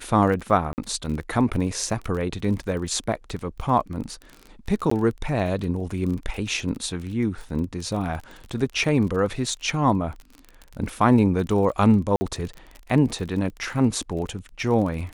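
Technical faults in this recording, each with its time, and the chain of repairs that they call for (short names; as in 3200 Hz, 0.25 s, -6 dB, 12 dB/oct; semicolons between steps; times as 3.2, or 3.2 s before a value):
crackle 33/s -31 dBFS
0.73–0.78 gap 49 ms
4.9–4.91 gap 14 ms
12.16–12.21 gap 50 ms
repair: de-click; interpolate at 0.73, 49 ms; interpolate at 4.9, 14 ms; interpolate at 12.16, 50 ms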